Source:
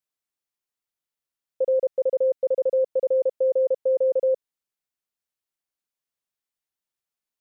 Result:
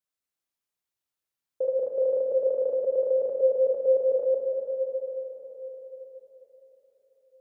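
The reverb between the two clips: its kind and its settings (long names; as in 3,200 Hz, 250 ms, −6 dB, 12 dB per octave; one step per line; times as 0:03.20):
dense smooth reverb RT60 4.6 s, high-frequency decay 0.85×, DRR −2 dB
level −3.5 dB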